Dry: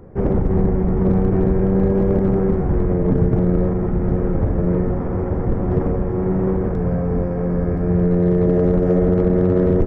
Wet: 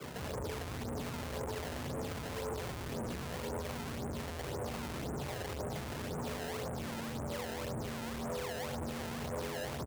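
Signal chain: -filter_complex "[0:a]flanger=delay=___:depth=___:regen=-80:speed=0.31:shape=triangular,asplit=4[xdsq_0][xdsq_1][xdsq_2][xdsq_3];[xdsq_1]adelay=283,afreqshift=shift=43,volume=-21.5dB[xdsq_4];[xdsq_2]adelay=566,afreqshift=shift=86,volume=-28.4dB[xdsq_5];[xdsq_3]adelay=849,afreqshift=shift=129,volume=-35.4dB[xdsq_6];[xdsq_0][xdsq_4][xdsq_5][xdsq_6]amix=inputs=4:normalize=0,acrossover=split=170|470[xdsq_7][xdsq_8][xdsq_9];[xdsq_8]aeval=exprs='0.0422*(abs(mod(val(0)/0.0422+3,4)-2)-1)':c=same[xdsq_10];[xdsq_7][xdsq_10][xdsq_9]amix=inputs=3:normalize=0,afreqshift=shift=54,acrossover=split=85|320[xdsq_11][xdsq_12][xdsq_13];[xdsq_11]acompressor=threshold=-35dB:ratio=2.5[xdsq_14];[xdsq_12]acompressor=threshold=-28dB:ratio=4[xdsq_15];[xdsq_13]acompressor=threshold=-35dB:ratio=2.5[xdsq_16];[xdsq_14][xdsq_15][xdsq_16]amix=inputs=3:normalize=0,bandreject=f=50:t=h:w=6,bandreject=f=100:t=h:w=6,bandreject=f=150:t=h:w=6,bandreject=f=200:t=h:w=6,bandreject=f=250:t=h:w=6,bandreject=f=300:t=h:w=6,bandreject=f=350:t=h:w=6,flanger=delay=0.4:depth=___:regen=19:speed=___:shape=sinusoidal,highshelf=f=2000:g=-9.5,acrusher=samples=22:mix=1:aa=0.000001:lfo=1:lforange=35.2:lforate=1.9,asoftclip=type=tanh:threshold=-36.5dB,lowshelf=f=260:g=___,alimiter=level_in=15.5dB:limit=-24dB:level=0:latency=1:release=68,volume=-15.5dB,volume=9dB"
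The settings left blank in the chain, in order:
9.2, 6.1, 1.8, 1, -10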